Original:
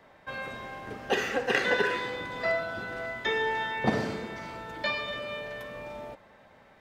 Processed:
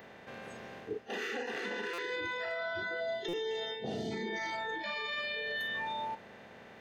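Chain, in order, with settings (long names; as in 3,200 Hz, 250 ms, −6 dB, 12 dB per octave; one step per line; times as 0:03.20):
compressor on every frequency bin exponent 0.4
noise reduction from a noise print of the clip's start 23 dB
gain on a spectral selection 0:03.00–0:04.12, 840–2,700 Hz −13 dB
reversed playback
downward compressor 12 to 1, threshold −33 dBFS, peak gain reduction 16.5 dB
reversed playback
brickwall limiter −32.5 dBFS, peak gain reduction 9 dB
buffer that repeats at 0:01.93/0:03.28, samples 256, times 8
level +3.5 dB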